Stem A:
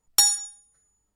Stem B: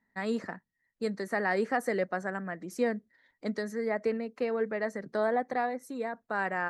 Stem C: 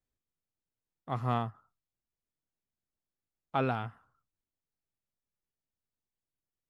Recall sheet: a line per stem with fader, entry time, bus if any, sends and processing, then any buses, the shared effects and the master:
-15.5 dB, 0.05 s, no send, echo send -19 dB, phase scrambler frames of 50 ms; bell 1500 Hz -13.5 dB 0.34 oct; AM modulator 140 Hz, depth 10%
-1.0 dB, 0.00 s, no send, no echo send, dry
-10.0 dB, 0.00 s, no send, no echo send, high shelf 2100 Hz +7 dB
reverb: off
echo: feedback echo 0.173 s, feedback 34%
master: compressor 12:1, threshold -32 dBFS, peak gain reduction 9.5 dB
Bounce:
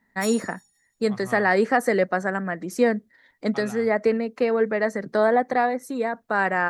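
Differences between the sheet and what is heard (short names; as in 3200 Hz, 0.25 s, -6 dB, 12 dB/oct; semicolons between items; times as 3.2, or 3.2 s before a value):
stem B -1.0 dB -> +9.0 dB; master: missing compressor 12:1, threshold -32 dBFS, peak gain reduction 9.5 dB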